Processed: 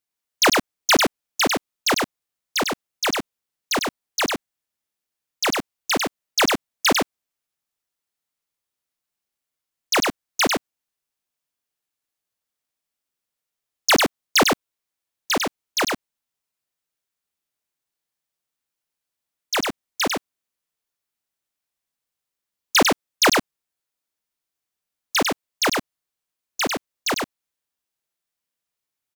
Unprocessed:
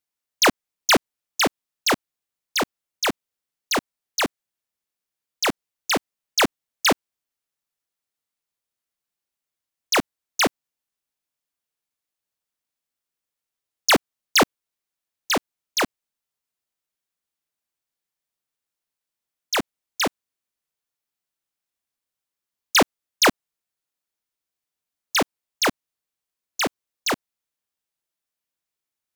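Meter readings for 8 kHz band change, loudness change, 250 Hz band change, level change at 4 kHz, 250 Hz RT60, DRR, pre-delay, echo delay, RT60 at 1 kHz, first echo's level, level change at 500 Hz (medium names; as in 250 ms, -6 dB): +1.5 dB, +1.0 dB, +1.5 dB, +1.5 dB, no reverb, no reverb, no reverb, 99 ms, no reverb, -3.5 dB, +1.5 dB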